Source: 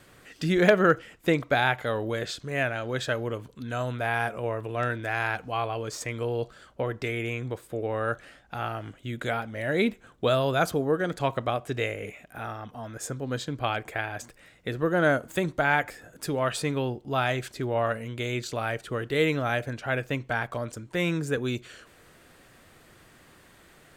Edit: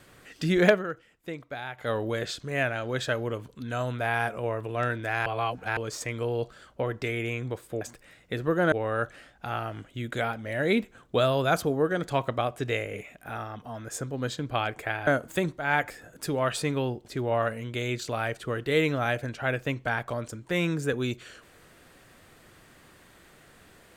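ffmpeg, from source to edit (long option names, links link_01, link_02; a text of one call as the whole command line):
ffmpeg -i in.wav -filter_complex "[0:a]asplit=10[link_01][link_02][link_03][link_04][link_05][link_06][link_07][link_08][link_09][link_10];[link_01]atrim=end=0.83,asetpts=PTS-STARTPTS,afade=type=out:start_time=0.69:duration=0.14:silence=0.211349[link_11];[link_02]atrim=start=0.83:end=1.76,asetpts=PTS-STARTPTS,volume=-13.5dB[link_12];[link_03]atrim=start=1.76:end=5.262,asetpts=PTS-STARTPTS,afade=type=in:duration=0.14:silence=0.211349[link_13];[link_04]atrim=start=5.258:end=5.772,asetpts=PTS-STARTPTS,areverse[link_14];[link_05]atrim=start=5.768:end=7.812[link_15];[link_06]atrim=start=14.158:end=15.072[link_16];[link_07]atrim=start=7.808:end=14.162[link_17];[link_08]atrim=start=15.068:end=15.58,asetpts=PTS-STARTPTS,afade=type=out:start_time=0.508:duration=0.004:curve=hsin:silence=0.188365[link_18];[link_09]atrim=start=15.58:end=17.062,asetpts=PTS-STARTPTS,afade=type=in:duration=0.25:curve=qsin:silence=0.188365[link_19];[link_10]atrim=start=17.498[link_20];[link_11][link_12][link_13]concat=n=3:v=0:a=1[link_21];[link_21][link_14]acrossfade=duration=0.004:curve1=hsin:curve2=hsin[link_22];[link_22][link_15]acrossfade=duration=0.004:curve1=hsin:curve2=hsin[link_23];[link_23][link_16]acrossfade=duration=0.004:curve1=hsin:curve2=hsin[link_24];[link_24][link_17]acrossfade=duration=0.004:curve1=hsin:curve2=hsin[link_25];[link_18][link_19]concat=n=2:v=0:a=1[link_26];[link_25][link_26]acrossfade=duration=0.004:curve1=hsin:curve2=hsin[link_27];[link_27][link_20]acrossfade=duration=0.004:curve1=hsin:curve2=hsin" out.wav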